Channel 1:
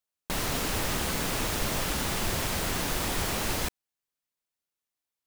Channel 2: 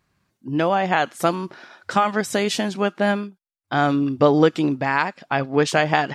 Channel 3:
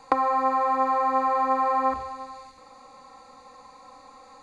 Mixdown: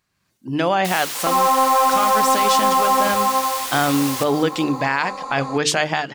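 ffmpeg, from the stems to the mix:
-filter_complex "[0:a]highpass=810,adelay=550,volume=-2.5dB,asplit=2[a][b];[b]volume=-12.5dB[c];[1:a]volume=-6dB[d];[2:a]aeval=exprs='(tanh(5.01*val(0)+0.4)-tanh(0.4))/5.01':c=same,acompressor=threshold=-28dB:ratio=6,equalizer=f=250:t=o:w=1:g=7,equalizer=f=500:t=o:w=1:g=8,equalizer=f=1k:t=o:w=1:g=10,adelay=1150,volume=0.5dB[e];[d][e]amix=inputs=2:normalize=0,dynaudnorm=f=110:g=5:m=8.5dB,alimiter=limit=-10dB:level=0:latency=1:release=35,volume=0dB[f];[c]aecho=0:1:199|398|597|796|995|1194:1|0.45|0.202|0.0911|0.041|0.0185[g];[a][f][g]amix=inputs=3:normalize=0,highshelf=f=2.3k:g=8.5,bandreject=f=50:t=h:w=6,bandreject=f=100:t=h:w=6,bandreject=f=150:t=h:w=6,bandreject=f=200:t=h:w=6,bandreject=f=250:t=h:w=6,bandreject=f=300:t=h:w=6,bandreject=f=350:t=h:w=6,bandreject=f=400:t=h:w=6,bandreject=f=450:t=h:w=6"

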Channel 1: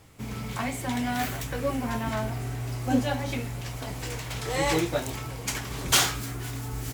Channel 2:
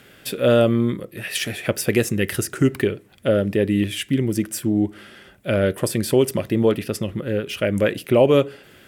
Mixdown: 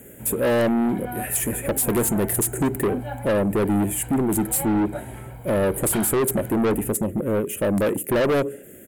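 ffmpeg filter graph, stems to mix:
-filter_complex "[0:a]lowpass=1.8k,aecho=1:1:1.3:0.65,volume=-5dB[a];[1:a]firequalizer=gain_entry='entry(120,0);entry(220,7);entry(590,5);entry(940,-18);entry(1800,-4);entry(4500,-23);entry(6800,9);entry(11000,13)':delay=0.05:min_phase=1,volume=0.5dB[b];[a][b]amix=inputs=2:normalize=0,equalizer=f=5.7k:t=o:w=0.39:g=-7,asoftclip=type=tanh:threshold=-17.5dB"

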